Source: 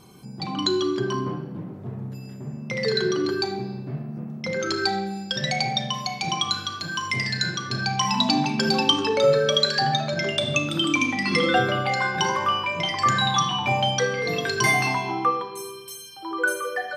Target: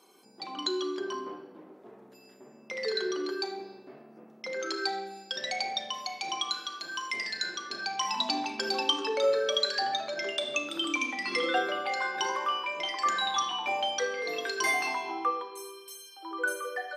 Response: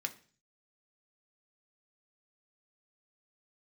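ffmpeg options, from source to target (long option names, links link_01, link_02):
-af "highpass=frequency=320:width=0.5412,highpass=frequency=320:width=1.3066,volume=-7dB"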